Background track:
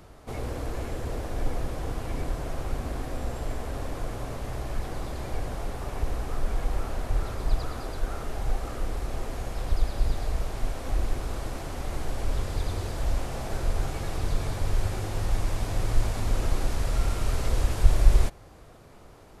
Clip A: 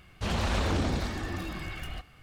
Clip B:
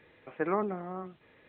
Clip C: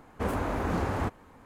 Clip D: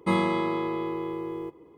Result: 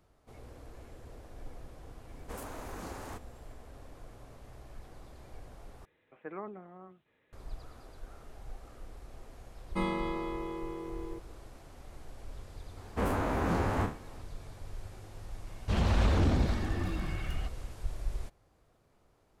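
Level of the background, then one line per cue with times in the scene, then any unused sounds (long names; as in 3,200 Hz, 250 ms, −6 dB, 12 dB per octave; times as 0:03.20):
background track −17.5 dB
0:02.09: mix in C −12.5 dB + bass and treble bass −6 dB, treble +13 dB
0:05.85: overwrite with B −12 dB
0:09.69: mix in D −8.5 dB
0:12.77: mix in C −2 dB + peak hold with a decay on every bin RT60 0.35 s
0:15.47: mix in A −2.5 dB + spectral tilt −1.5 dB per octave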